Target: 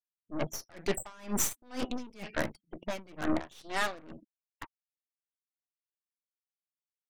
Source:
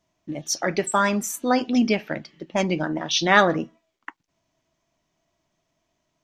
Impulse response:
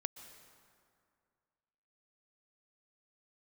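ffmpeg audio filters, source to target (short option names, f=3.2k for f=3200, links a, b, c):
-af "afftfilt=real='re*gte(hypot(re,im),0.00794)':imag='im*gte(hypot(re,im),0.00794)':win_size=1024:overlap=0.75,areverse,acompressor=threshold=-32dB:ratio=16,areverse,atempo=0.88,aeval=exprs='0.0668*(cos(1*acos(clip(val(0)/0.0668,-1,1)))-cos(1*PI/2))+0.000376*(cos(4*acos(clip(val(0)/0.0668,-1,1)))-cos(4*PI/2))+0.00237*(cos(5*acos(clip(val(0)/0.0668,-1,1)))-cos(5*PI/2))+0.00075*(cos(6*acos(clip(val(0)/0.0668,-1,1)))-cos(6*PI/2))+0.015*(cos(8*acos(clip(val(0)/0.0668,-1,1)))-cos(8*PI/2))':c=same,aeval=exprs='val(0)*pow(10,-27*(0.5-0.5*cos(2*PI*2.1*n/s))/20)':c=same,volume=6.5dB"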